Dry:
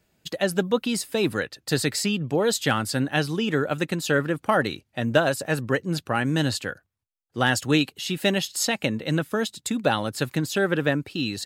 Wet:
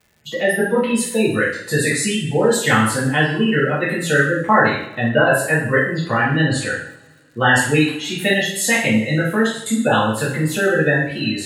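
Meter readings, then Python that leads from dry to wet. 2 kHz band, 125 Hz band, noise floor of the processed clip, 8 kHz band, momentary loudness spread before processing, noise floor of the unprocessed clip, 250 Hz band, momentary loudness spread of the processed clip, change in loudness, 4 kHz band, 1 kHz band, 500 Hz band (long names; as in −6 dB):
+10.5 dB, +6.5 dB, −47 dBFS, +6.5 dB, 5 LU, −74 dBFS, +6.5 dB, 6 LU, +7.0 dB, +3.5 dB, +8.0 dB, +6.5 dB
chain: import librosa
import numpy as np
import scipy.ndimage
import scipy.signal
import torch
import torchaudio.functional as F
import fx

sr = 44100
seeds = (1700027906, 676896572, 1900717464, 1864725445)

p1 = fx.spec_gate(x, sr, threshold_db=-20, keep='strong')
p2 = fx.graphic_eq_31(p1, sr, hz=(1000, 2000, 5000, 10000), db=(7, 12, -10, 7))
p3 = p2 + fx.room_flutter(p2, sr, wall_m=7.9, rt60_s=0.22, dry=0)
p4 = fx.rev_double_slope(p3, sr, seeds[0], early_s=0.58, late_s=2.2, knee_db=-24, drr_db=-8.5)
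p5 = fx.dmg_crackle(p4, sr, seeds[1], per_s=200.0, level_db=-41.0)
y = F.gain(torch.from_numpy(p5), -3.0).numpy()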